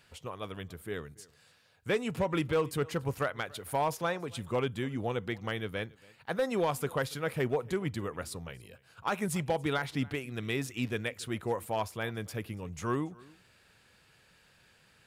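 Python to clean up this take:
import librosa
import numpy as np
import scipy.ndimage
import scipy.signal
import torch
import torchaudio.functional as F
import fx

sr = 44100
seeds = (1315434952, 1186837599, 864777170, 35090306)

y = fx.fix_declip(x, sr, threshold_db=-22.0)
y = fx.fix_echo_inverse(y, sr, delay_ms=283, level_db=-23.5)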